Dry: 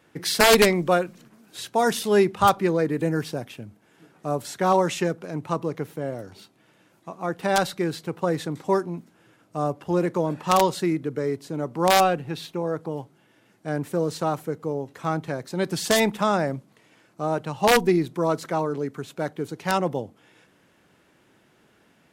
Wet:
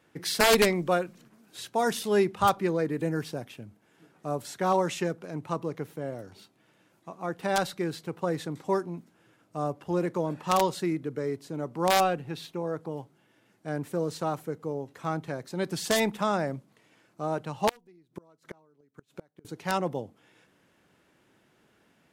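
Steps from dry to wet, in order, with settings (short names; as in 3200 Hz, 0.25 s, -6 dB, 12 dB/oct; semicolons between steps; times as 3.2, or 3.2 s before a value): 17.69–19.45 flipped gate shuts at -21 dBFS, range -32 dB; gain -5 dB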